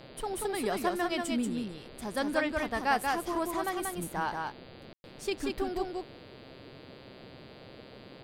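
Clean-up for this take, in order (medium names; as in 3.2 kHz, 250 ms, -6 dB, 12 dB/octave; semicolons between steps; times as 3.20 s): de-hum 131.1 Hz, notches 37; room tone fill 4.93–5.04 s; noise print and reduce 28 dB; inverse comb 185 ms -3.5 dB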